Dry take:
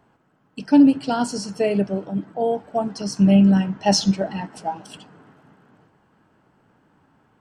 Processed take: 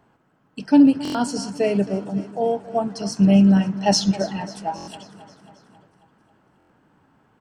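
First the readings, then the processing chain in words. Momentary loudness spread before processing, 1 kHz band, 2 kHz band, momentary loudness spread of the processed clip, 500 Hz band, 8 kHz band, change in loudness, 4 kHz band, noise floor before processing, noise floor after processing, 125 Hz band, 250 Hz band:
15 LU, −0.5 dB, 0.0 dB, 15 LU, 0.0 dB, 0.0 dB, 0.0 dB, 0.0 dB, −62 dBFS, −62 dBFS, 0.0 dB, 0.0 dB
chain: repeating echo 270 ms, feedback 59%, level −17 dB
buffer that repeats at 0:01.03/0:04.76/0:06.58, samples 1,024, times 4

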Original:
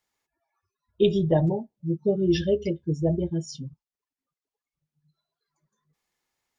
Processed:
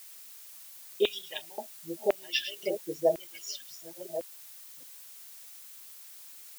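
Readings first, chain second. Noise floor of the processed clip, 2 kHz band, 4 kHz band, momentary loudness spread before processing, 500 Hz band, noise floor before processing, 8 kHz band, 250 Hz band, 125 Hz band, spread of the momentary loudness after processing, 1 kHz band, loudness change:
−49 dBFS, +4.5 dB, +4.0 dB, 10 LU, −5.5 dB, below −85 dBFS, can't be measured, −16.5 dB, −28.5 dB, 17 LU, −2.0 dB, −8.0 dB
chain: delay that plays each chunk backwards 604 ms, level −10.5 dB
auto-filter high-pass square 0.95 Hz 650–2,400 Hz
background noise blue −49 dBFS

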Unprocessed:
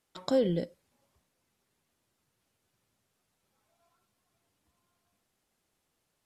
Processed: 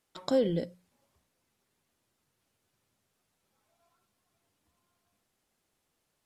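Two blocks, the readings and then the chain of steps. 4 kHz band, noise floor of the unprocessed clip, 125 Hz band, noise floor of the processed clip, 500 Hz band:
0.0 dB, −80 dBFS, −1.0 dB, −80 dBFS, 0.0 dB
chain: mains-hum notches 60/120/180 Hz

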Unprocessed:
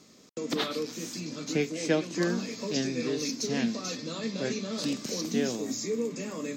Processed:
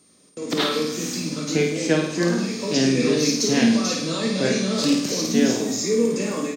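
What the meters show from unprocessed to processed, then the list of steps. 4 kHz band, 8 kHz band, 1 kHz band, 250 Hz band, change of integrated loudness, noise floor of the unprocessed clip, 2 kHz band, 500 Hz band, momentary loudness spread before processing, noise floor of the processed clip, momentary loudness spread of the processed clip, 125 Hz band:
+10.0 dB, +10.0 dB, +9.5 dB, +10.0 dB, +10.0 dB, −56 dBFS, +9.0 dB, +9.0 dB, 7 LU, −56 dBFS, 6 LU, +10.0 dB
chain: double-tracking delay 25 ms −12 dB
steady tone 8,800 Hz −54 dBFS
automatic gain control gain up to 14 dB
on a send: flutter between parallel walls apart 9 metres, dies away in 0.67 s
on the sum: level −4.5 dB

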